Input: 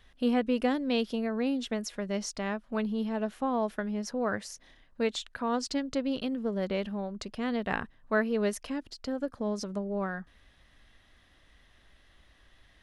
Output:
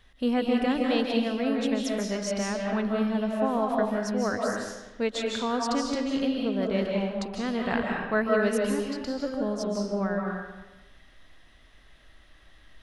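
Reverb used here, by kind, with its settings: algorithmic reverb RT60 1.1 s, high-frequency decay 0.8×, pre-delay 115 ms, DRR -1 dB; trim +1 dB

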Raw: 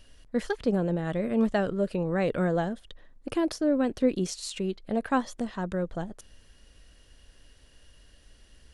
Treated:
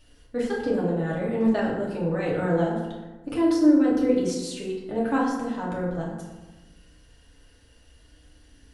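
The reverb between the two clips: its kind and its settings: FDN reverb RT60 1.2 s, low-frequency decay 1.2×, high-frequency decay 0.5×, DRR -6 dB; trim -5 dB

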